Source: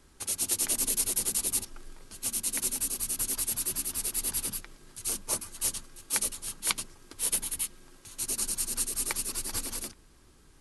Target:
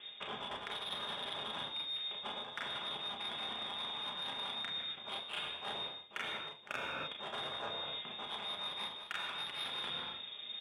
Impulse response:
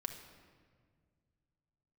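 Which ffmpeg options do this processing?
-filter_complex "[0:a]aecho=1:1:33|44:0.596|0.501,lowpass=f=3100:t=q:w=0.5098,lowpass=f=3100:t=q:w=0.6013,lowpass=f=3100:t=q:w=0.9,lowpass=f=3100:t=q:w=2.563,afreqshift=-3700,asplit=2[s0][s1];[s1]adynamicsmooth=sensitivity=5.5:basefreq=830,volume=1.41[s2];[s0][s2]amix=inputs=2:normalize=0[s3];[1:a]atrim=start_sample=2205,afade=t=out:st=0.37:d=0.01,atrim=end_sample=16758[s4];[s3][s4]afir=irnorm=-1:irlink=0,areverse,acompressor=threshold=0.00355:ratio=16,areverse,highpass=100,volume=3.55"

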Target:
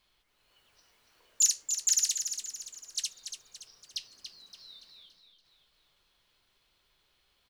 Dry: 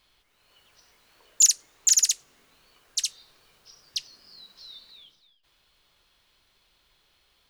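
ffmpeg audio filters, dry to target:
-filter_complex "[0:a]flanger=delay=4.8:depth=9.5:regen=-72:speed=0.33:shape=triangular,asplit=2[s0][s1];[s1]aecho=0:1:285|570|855|1140|1425:0.398|0.175|0.0771|0.0339|0.0149[s2];[s0][s2]amix=inputs=2:normalize=0,volume=0.794"

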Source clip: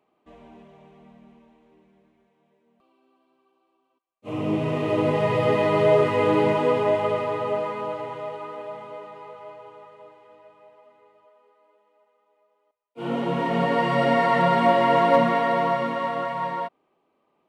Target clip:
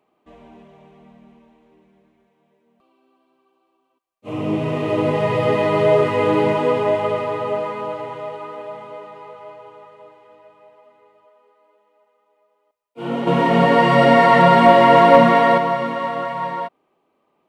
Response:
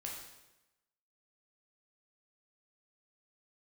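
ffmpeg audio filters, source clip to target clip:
-filter_complex "[0:a]asettb=1/sr,asplit=3[s0][s1][s2];[s0]atrim=end=13.274[s3];[s1]atrim=start=13.27:end=15.58,asetpts=PTS-STARTPTS,afade=t=in:d=0.004:c=qsin,afade=t=out:st=2.306:d=0.004:c=qsin,acontrast=38[s4];[s2]atrim=start=15.576[s5];[s3][s4]acrossfade=d=0.004:c1=hsin:c2=qsin[s6];[s6][s5]acrossfade=d=0.004:c1=qsin:c2=hsin,volume=1.41"

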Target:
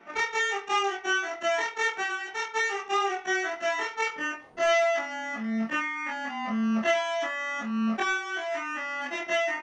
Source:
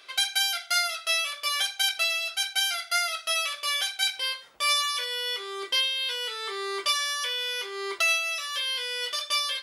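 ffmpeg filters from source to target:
-af "afftfilt=real='re':imag='-im':win_size=2048:overlap=0.75,asetrate=25476,aresample=44100,atempo=1.73107,tiltshelf=f=1300:g=7.5,volume=1.68"

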